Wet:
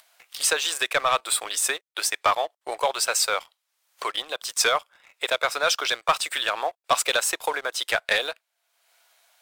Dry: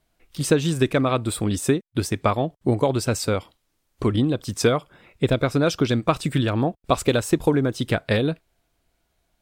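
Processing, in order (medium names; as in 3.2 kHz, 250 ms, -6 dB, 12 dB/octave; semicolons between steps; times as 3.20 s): Bessel high-pass 980 Hz, order 6; upward compressor, threshold -42 dBFS; waveshaping leveller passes 2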